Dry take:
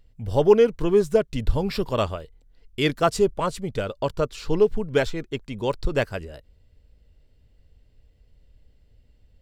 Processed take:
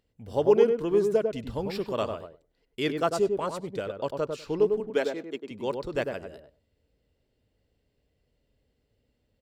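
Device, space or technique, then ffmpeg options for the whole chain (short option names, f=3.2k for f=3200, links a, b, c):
filter by subtraction: -filter_complex "[0:a]asettb=1/sr,asplit=3[a][b][c];[a]atrim=end=4.804[d];[b]atrim=start=4.8:end=5.51,asetpts=PTS-STARTPTS,afade=t=in:d=0.004:c=qsin,afade=t=out:st=0.706:d=0.004:c=qsin,highpass=f=200:w=0.5412,highpass=f=200:w=1.3066[e];[c]atrim=start=5.506[f];[d][e]acrossfade=d=0.004:c1=hsin:c2=qsin[g];[g][f]acrossfade=d=0.004:c1=qsin:c2=hsin,asplit=2[h][i];[i]lowpass=330,volume=-1[j];[h][j]amix=inputs=2:normalize=0,asplit=2[k][l];[l]adelay=99,lowpass=f=1.1k:p=1,volume=-4dB,asplit=2[m][n];[n]adelay=99,lowpass=f=1.1k:p=1,volume=0.15,asplit=2[o][p];[p]adelay=99,lowpass=f=1.1k:p=1,volume=0.15[q];[k][m][o][q]amix=inputs=4:normalize=0,volume=-7dB"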